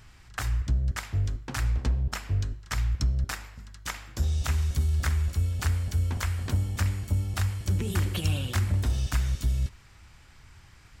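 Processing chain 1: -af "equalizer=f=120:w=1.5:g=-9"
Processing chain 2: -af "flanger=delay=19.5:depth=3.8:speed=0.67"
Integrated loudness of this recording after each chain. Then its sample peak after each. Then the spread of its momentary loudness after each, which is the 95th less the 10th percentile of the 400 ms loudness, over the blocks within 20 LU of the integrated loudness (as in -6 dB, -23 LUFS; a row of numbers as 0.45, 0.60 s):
-32.0, -32.0 LUFS; -17.0, -17.5 dBFS; 6, 9 LU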